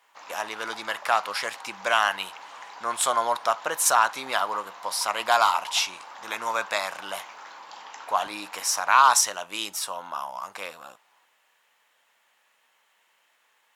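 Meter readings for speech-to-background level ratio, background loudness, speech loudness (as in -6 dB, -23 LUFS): 17.5 dB, -42.5 LUFS, -25.0 LUFS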